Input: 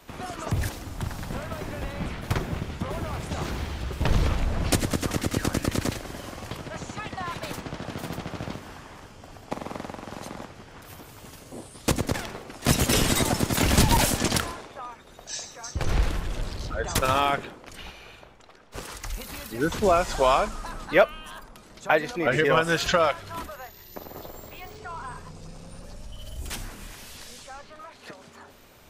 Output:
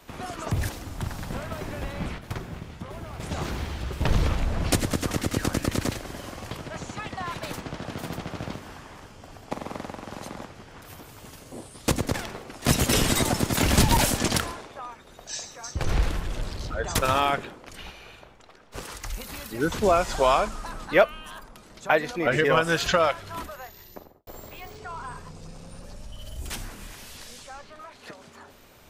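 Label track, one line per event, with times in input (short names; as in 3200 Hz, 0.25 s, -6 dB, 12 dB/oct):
2.180000	3.200000	resonator 56 Hz, decay 1.7 s
23.810000	24.270000	studio fade out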